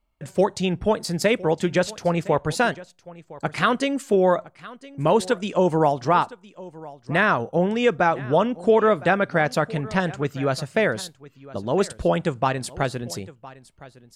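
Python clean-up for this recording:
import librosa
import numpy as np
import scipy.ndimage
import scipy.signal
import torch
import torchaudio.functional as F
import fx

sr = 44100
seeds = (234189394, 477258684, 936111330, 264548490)

y = fx.fix_echo_inverse(x, sr, delay_ms=1011, level_db=-19.5)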